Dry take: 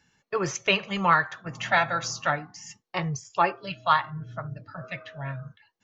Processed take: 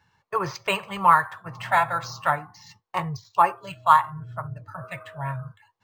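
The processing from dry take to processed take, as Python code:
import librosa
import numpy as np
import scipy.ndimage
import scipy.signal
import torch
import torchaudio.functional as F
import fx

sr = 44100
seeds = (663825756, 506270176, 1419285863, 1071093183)

y = fx.graphic_eq_15(x, sr, hz=(100, 250, 1000), db=(10, -7, 12))
y = fx.rider(y, sr, range_db=4, speed_s=2.0)
y = np.interp(np.arange(len(y)), np.arange(len(y))[::4], y[::4])
y = F.gain(torch.from_numpy(y), -4.0).numpy()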